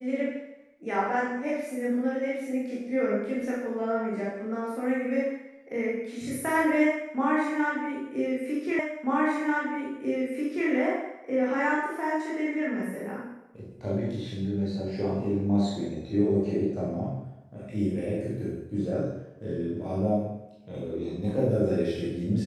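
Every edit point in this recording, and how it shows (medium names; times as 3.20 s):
8.79 s: repeat of the last 1.89 s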